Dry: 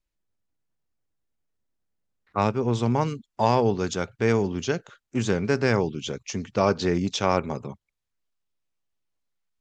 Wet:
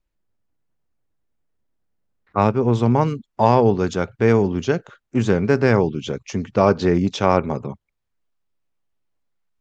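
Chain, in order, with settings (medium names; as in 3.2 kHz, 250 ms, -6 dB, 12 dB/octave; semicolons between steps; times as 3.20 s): treble shelf 2.9 kHz -11 dB; trim +6.5 dB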